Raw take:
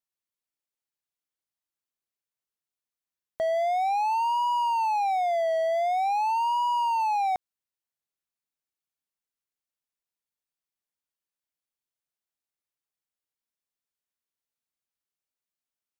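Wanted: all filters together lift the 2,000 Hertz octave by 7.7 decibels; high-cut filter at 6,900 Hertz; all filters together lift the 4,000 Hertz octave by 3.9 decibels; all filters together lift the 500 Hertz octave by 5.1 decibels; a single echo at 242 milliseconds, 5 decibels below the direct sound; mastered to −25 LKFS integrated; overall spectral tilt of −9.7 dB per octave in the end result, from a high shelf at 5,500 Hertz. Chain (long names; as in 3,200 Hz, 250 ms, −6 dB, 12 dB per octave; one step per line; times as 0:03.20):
low-pass filter 6,900 Hz
parametric band 500 Hz +7.5 dB
parametric band 2,000 Hz +9 dB
parametric band 4,000 Hz +3 dB
high-shelf EQ 5,500 Hz −6.5 dB
single-tap delay 242 ms −5 dB
level −4.5 dB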